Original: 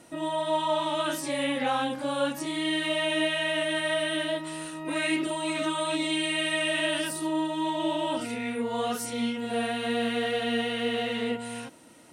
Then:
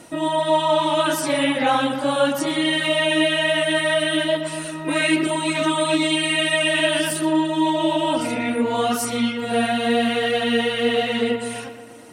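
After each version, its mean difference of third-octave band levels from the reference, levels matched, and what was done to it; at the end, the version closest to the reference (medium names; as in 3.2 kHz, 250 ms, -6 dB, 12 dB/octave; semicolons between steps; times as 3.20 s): 2.0 dB: reverb removal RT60 0.67 s; filtered feedback delay 120 ms, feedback 68%, low-pass 3.5 kHz, level -9.5 dB; trim +9 dB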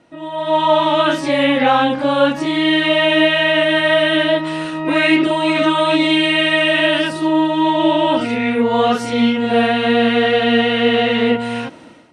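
4.0 dB: low-pass 3.7 kHz 12 dB/octave; level rider gain up to 15.5 dB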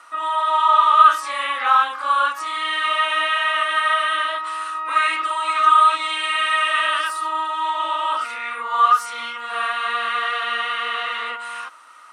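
11.0 dB: resonant high-pass 1.2 kHz, resonance Q 15; treble shelf 8.3 kHz -11.5 dB; trim +5 dB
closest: first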